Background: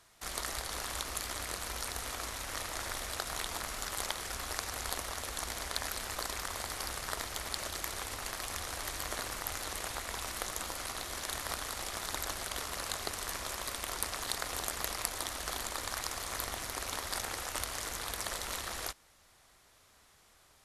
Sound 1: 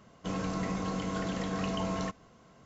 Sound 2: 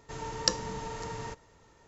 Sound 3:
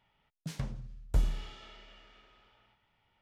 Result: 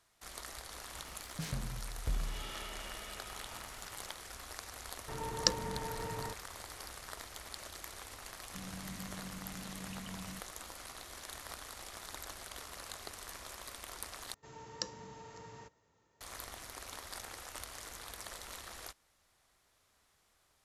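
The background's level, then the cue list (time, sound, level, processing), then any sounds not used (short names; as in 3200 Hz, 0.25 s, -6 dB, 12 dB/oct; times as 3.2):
background -9 dB
0.93 add 3 -9 dB + fast leveller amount 50%
4.99 add 2 -2 dB + Wiener smoothing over 9 samples
8.29 add 1 -11.5 dB + band shelf 700 Hz -13 dB 2.6 oct
14.34 replace with 2 -12.5 dB + HPF 75 Hz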